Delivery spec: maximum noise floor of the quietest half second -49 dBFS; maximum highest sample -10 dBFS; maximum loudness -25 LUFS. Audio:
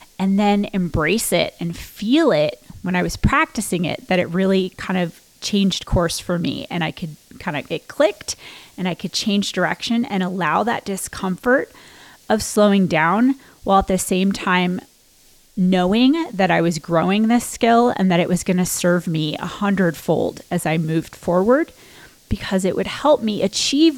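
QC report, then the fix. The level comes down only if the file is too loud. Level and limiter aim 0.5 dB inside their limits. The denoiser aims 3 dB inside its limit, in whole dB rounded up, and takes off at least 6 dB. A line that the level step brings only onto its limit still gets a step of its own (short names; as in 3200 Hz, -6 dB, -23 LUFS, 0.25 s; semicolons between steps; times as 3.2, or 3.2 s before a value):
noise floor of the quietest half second -52 dBFS: OK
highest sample -4.5 dBFS: fail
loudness -19.0 LUFS: fail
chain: gain -6.5 dB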